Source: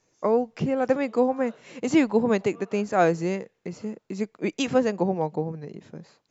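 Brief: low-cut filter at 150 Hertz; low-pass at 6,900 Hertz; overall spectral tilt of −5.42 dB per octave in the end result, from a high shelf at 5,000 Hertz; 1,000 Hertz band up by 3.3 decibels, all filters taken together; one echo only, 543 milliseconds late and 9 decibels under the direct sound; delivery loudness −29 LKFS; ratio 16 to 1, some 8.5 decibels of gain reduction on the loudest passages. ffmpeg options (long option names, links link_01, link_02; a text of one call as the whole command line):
ffmpeg -i in.wav -af "highpass=150,lowpass=6900,equalizer=frequency=1000:width_type=o:gain=5,highshelf=frequency=5000:gain=-4.5,acompressor=threshold=-22dB:ratio=16,aecho=1:1:543:0.355,volume=0.5dB" out.wav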